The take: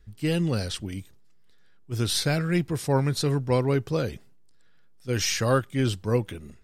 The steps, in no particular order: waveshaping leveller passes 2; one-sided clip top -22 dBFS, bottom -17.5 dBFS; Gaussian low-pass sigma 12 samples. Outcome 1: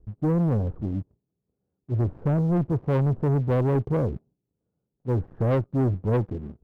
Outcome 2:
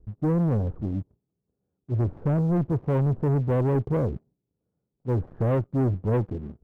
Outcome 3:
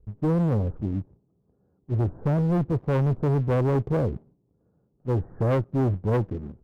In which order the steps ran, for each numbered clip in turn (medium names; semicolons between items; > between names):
Gaussian low-pass > one-sided clip > waveshaping leveller; one-sided clip > Gaussian low-pass > waveshaping leveller; Gaussian low-pass > waveshaping leveller > one-sided clip